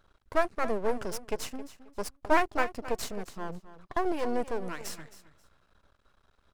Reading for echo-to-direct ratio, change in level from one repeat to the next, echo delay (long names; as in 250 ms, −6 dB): −15.0 dB, −13.5 dB, 267 ms